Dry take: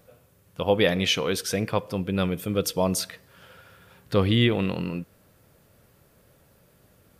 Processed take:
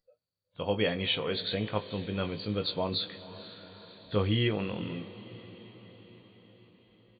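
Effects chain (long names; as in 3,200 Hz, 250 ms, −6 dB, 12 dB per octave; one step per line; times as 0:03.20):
hearing-aid frequency compression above 3,200 Hz 4 to 1
double-tracking delay 19 ms −7 dB
noise reduction from a noise print of the clip's start 27 dB
on a send: feedback delay with all-pass diffusion 491 ms, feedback 59%, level −15.5 dB
on the sum: level −7.5 dB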